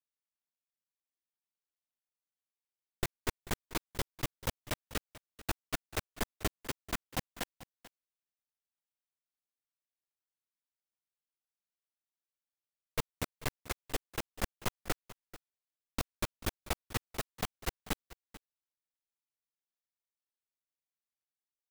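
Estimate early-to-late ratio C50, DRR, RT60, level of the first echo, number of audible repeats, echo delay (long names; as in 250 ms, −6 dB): no reverb audible, no reverb audible, no reverb audible, −17.5 dB, 1, 439 ms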